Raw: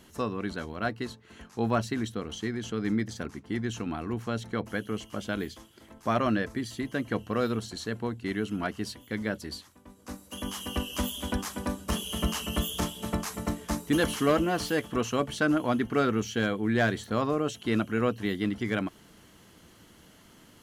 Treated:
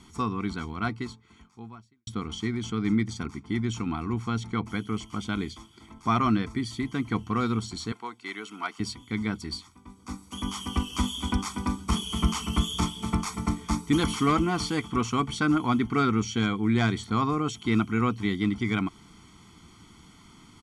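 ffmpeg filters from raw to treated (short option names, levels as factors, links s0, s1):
-filter_complex "[0:a]asettb=1/sr,asplit=3[s0][s1][s2];[s0]atrim=end=7.924[s3];[s1]atrim=start=7.92:end=8.8,asetpts=PTS-STARTPTS,afade=t=in:d=0.004:c=qsin,afade=t=out:st=0.876:d=0.004:c=qsin,highpass=580[s4];[s2]atrim=start=8.796[s5];[s3][s4]acrossfade=d=0.004:c1=hsin:c2=qsin[s6];[s6][s5]acrossfade=d=0.004:c1=qsin:c2=hsin,asplit=2[s7][s8];[s7]atrim=end=2.07,asetpts=PTS-STARTPTS,afade=t=out:st=0.92:d=1.15:c=qua[s9];[s8]atrim=start=2.07,asetpts=PTS-STARTPTS,afade=t=in:d=0.004:c=hsin[s10];[s9][s10]concat=n=2:v=0:a=1,lowpass=f=9400:w=0.5412,lowpass=f=9400:w=1.3066,aecho=1:1:0.9:0.9"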